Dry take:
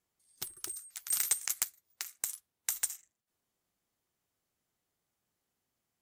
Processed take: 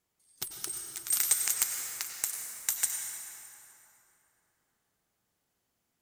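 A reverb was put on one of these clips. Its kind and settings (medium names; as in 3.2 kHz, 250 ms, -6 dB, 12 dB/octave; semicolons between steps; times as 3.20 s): plate-style reverb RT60 3.4 s, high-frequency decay 0.6×, pre-delay 80 ms, DRR 2.5 dB; trim +3 dB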